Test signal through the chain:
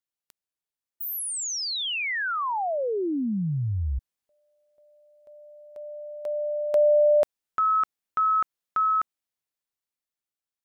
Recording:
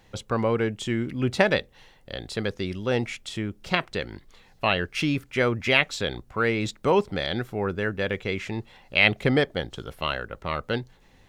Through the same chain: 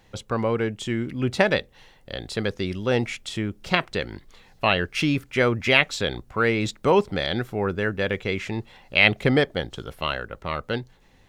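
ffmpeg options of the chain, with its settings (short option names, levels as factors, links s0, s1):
-af "dynaudnorm=f=550:g=7:m=2"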